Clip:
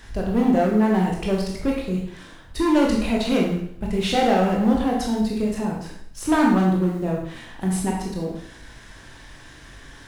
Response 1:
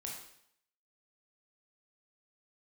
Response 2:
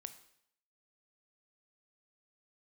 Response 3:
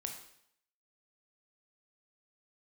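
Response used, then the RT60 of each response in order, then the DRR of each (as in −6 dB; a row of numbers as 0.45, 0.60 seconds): 1; 0.70, 0.70, 0.70 seconds; −2.0, 9.5, 2.5 decibels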